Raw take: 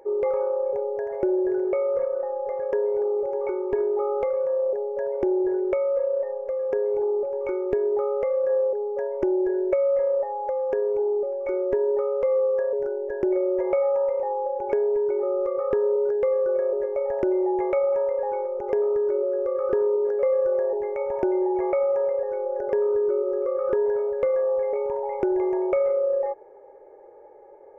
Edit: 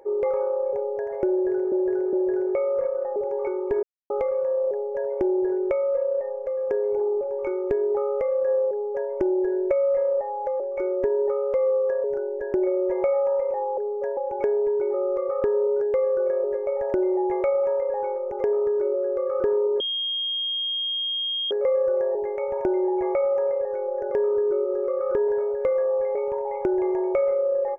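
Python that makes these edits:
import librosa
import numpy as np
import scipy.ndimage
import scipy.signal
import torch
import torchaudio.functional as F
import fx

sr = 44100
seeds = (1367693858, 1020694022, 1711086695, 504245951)

y = fx.edit(x, sr, fx.repeat(start_s=1.31, length_s=0.41, count=3),
    fx.cut(start_s=2.34, length_s=0.84),
    fx.silence(start_s=3.85, length_s=0.27),
    fx.duplicate(start_s=8.72, length_s=0.4, to_s=14.46),
    fx.cut(start_s=10.62, length_s=0.67),
    fx.insert_tone(at_s=20.09, length_s=1.71, hz=3240.0, db=-24.0), tone=tone)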